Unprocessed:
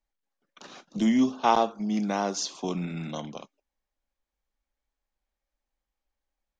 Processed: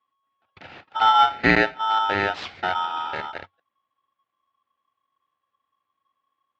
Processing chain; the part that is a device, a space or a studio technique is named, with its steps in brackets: ring modulator pedal into a guitar cabinet (polarity switched at an audio rate 1100 Hz; speaker cabinet 86–3400 Hz, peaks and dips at 93 Hz +6 dB, 710 Hz +4 dB, 1100 Hz +4 dB); gain +4.5 dB

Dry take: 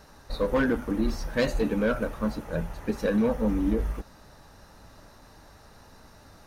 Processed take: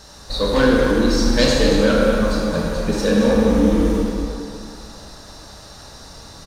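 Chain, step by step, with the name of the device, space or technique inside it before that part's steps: band shelf 5400 Hz +10 dB; cave (echo 0.229 s -8.5 dB; reverb RT60 2.5 s, pre-delay 22 ms, DRR -3 dB); gain +5 dB

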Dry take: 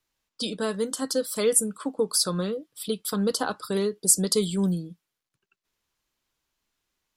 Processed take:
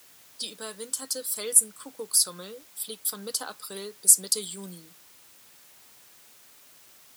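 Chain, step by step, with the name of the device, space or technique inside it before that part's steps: turntable without a phono preamp (RIAA curve recording; white noise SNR 24 dB); HPF 83 Hz; gain -9.5 dB

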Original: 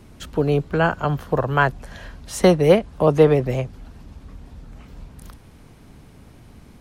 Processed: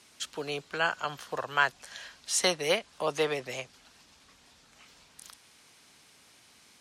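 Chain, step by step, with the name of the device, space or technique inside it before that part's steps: piezo pickup straight into a mixer (LPF 6400 Hz 12 dB/oct; differentiator); gain +8.5 dB

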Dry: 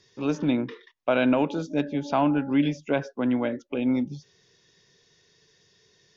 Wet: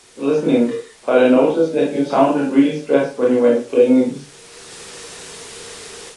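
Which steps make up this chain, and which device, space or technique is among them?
filmed off a television (BPF 160–6100 Hz; bell 470 Hz +12 dB 0.51 oct; reverb RT60 0.30 s, pre-delay 23 ms, DRR -3.5 dB; white noise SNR 28 dB; AGC gain up to 12 dB; gain -1 dB; AAC 32 kbps 22050 Hz)

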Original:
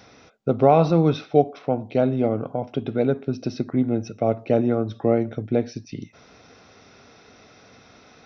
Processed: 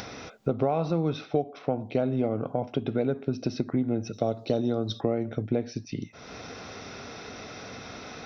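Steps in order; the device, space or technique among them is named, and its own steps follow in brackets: 4.13–5.01 resonant high shelf 3000 Hz +9 dB, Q 3; upward and downward compression (upward compressor, threshold -31 dBFS; compressor 6:1, threshold -22 dBFS, peak gain reduction 12 dB)

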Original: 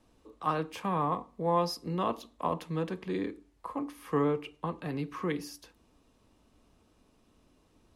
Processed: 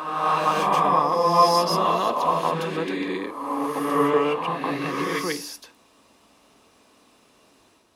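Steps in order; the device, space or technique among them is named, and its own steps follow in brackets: ghost voice (reverse; reverb RT60 1.5 s, pre-delay 0.117 s, DRR -4.5 dB; reverse; HPF 610 Hz 6 dB/oct); gain +9 dB

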